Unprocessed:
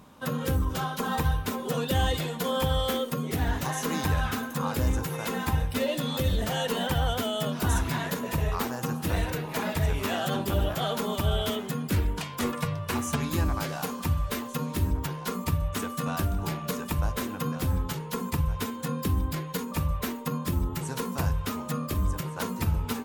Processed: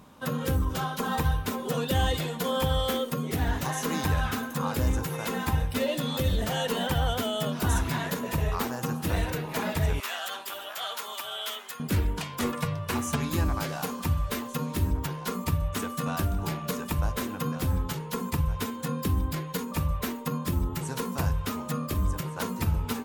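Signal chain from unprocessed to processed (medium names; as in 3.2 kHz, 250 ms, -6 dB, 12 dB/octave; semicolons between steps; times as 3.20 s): 10.00–11.80 s: high-pass 1.1 kHz 12 dB/octave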